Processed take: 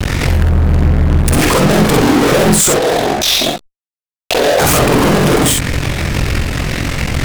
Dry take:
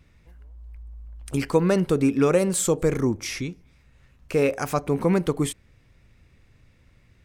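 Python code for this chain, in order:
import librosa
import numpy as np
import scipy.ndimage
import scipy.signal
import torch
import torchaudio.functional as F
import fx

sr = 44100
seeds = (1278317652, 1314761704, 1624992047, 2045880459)

p1 = x * np.sin(2.0 * np.pi * 22.0 * np.arange(len(x)) / sr)
p2 = fx.over_compress(p1, sr, threshold_db=-33.0, ratio=-1.0)
p3 = p1 + (p2 * 10.0 ** (1.0 / 20.0))
p4 = np.clip(p3, -10.0 ** (-21.0 / 20.0), 10.0 ** (-21.0 / 20.0))
p5 = fx.double_bandpass(p4, sr, hz=1600.0, octaves=2.4, at=(2.72, 4.59))
p6 = fx.vibrato(p5, sr, rate_hz=7.2, depth_cents=74.0)
p7 = fx.fuzz(p6, sr, gain_db=51.0, gate_db=-52.0)
p8 = p7 + fx.room_early_taps(p7, sr, ms=(48, 62), db=(-4.5, -5.5), dry=0)
p9 = fx.pre_swell(p8, sr, db_per_s=46.0)
y = p9 * 10.0 ** (1.5 / 20.0)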